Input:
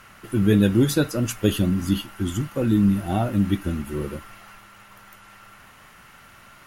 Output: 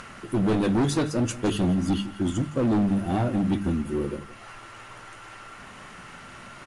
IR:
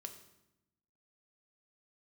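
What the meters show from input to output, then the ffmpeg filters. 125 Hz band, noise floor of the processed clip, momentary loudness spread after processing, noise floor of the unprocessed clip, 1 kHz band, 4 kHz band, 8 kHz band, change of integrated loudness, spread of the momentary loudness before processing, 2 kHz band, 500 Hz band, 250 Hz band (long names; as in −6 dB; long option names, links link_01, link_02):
−4.0 dB, −45 dBFS, 20 LU, −49 dBFS, +1.5 dB, −3.5 dB, −3.5 dB, −3.0 dB, 10 LU, −2.5 dB, −2.0 dB, −2.5 dB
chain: -af "equalizer=frequency=280:width_type=o:width=2.3:gain=5.5,bandreject=frequency=50:width_type=h:width=6,bandreject=frequency=100:width_type=h:width=6,bandreject=frequency=150:width_type=h:width=6,bandreject=frequency=200:width_type=h:width=6,acompressor=mode=upward:threshold=-32dB:ratio=2.5,flanger=delay=4.1:depth=4.8:regen=-76:speed=0.54:shape=triangular,volume=21dB,asoftclip=hard,volume=-21dB,aecho=1:1:169:0.141,aresample=22050,aresample=44100,volume=1.5dB"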